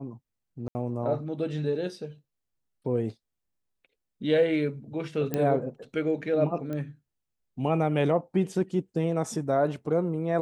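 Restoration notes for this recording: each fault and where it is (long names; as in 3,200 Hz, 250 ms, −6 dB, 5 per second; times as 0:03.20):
0:00.68–0:00.75: drop-out 70 ms
0:05.34: click −14 dBFS
0:06.73: click −23 dBFS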